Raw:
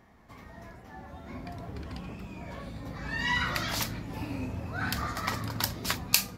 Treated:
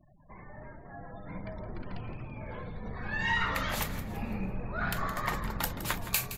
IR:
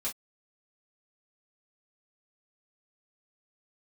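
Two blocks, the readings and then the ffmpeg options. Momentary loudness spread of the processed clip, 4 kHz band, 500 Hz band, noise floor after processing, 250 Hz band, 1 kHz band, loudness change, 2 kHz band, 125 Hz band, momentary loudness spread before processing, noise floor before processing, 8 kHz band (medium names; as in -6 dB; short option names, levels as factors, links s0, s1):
18 LU, -6.5 dB, +1.0 dB, -51 dBFS, -1.5 dB, +0.5 dB, -1.5 dB, -0.5 dB, -1.5 dB, 19 LU, -52 dBFS, -5.0 dB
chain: -filter_complex "[0:a]afftfilt=real='re*gte(hypot(re,im),0.00316)':imag='im*gte(hypot(re,im),0.00316)':win_size=1024:overlap=0.75,equalizer=f=5100:t=o:w=0.83:g=-11,acontrast=67,aeval=exprs='(tanh(3.55*val(0)+0.1)-tanh(0.1))/3.55':c=same,afreqshift=-66,asplit=2[s0][s1];[s1]aecho=0:1:167|334|501|668:0.224|0.0851|0.0323|0.0123[s2];[s0][s2]amix=inputs=2:normalize=0,volume=0.531"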